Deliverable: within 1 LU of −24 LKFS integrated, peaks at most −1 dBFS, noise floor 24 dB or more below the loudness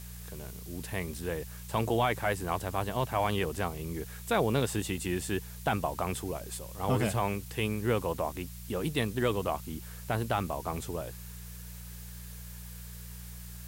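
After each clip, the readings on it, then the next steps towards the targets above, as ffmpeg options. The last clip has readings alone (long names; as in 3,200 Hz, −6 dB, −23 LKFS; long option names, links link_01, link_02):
mains hum 60 Hz; hum harmonics up to 180 Hz; level of the hum −43 dBFS; background noise floor −44 dBFS; target noise floor −57 dBFS; integrated loudness −32.5 LKFS; sample peak −16.5 dBFS; target loudness −24.0 LKFS
→ -af "bandreject=frequency=60:width_type=h:width=4,bandreject=frequency=120:width_type=h:width=4,bandreject=frequency=180:width_type=h:width=4"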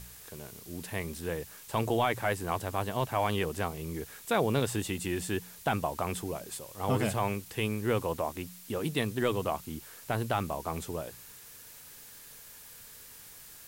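mains hum none found; background noise floor −51 dBFS; target noise floor −57 dBFS
→ -af "afftdn=noise_reduction=6:noise_floor=-51"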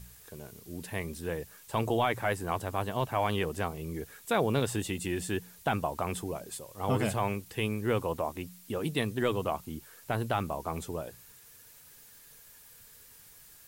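background noise floor −55 dBFS; target noise floor −57 dBFS
→ -af "afftdn=noise_reduction=6:noise_floor=-55"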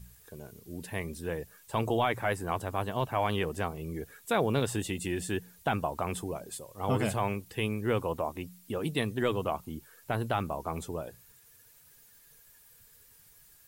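background noise floor −59 dBFS; integrated loudness −32.5 LKFS; sample peak −16.5 dBFS; target loudness −24.0 LKFS
→ -af "volume=8.5dB"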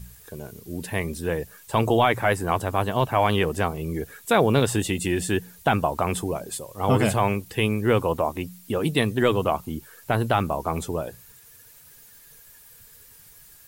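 integrated loudness −24.0 LKFS; sample peak −8.0 dBFS; background noise floor −51 dBFS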